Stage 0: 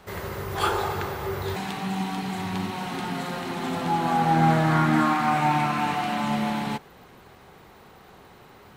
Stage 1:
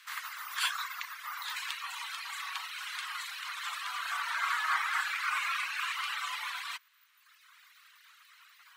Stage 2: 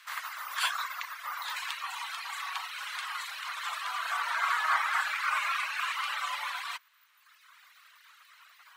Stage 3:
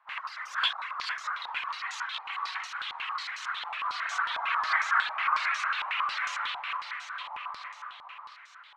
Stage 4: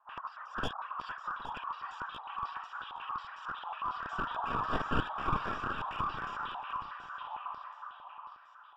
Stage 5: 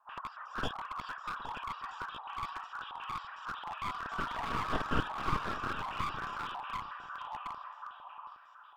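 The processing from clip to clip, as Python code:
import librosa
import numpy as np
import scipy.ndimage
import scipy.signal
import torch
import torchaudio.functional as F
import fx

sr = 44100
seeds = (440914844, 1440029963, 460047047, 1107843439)

y1 = fx.spec_gate(x, sr, threshold_db=-10, keep='weak')
y1 = fx.dereverb_blind(y1, sr, rt60_s=1.5)
y1 = scipy.signal.sosfilt(scipy.signal.ellip(4, 1.0, 80, 1100.0, 'highpass', fs=sr, output='sos'), y1)
y1 = y1 * 10.0 ** (2.5 / 20.0)
y2 = fx.peak_eq(y1, sr, hz=540.0, db=13.0, octaves=1.4)
y3 = fx.echo_feedback(y2, sr, ms=457, feedback_pct=59, wet_db=-6)
y3 = fx.spec_box(y3, sr, start_s=7.2, length_s=1.15, low_hz=560.0, high_hz=1300.0, gain_db=7)
y3 = fx.filter_held_lowpass(y3, sr, hz=11.0, low_hz=840.0, high_hz=6300.0)
y3 = y3 * 10.0 ** (-4.5 / 20.0)
y4 = np.minimum(y3, 2.0 * 10.0 ** (-26.0 / 20.0) - y3)
y4 = scipy.signal.lfilter(np.full(21, 1.0 / 21), 1.0, y4)
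y4 = y4 + 10.0 ** (-14.0 / 20.0) * np.pad(y4, (int(816 * sr / 1000.0), 0))[:len(y4)]
y4 = y4 * 10.0 ** (2.0 / 20.0)
y5 = np.minimum(y4, 2.0 * 10.0 ** (-34.5 / 20.0) - y4)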